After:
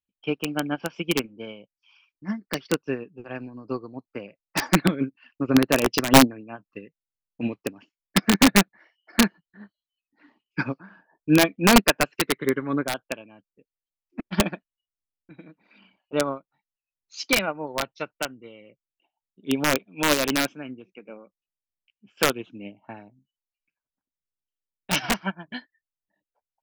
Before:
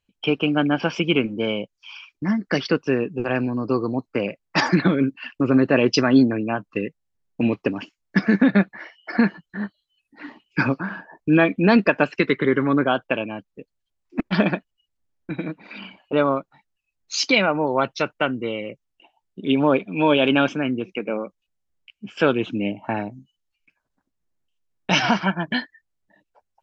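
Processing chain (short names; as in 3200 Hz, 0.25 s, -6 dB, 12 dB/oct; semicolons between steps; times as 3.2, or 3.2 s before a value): wrapped overs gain 7.5 dB; upward expander 2.5:1, over -26 dBFS; gain +3 dB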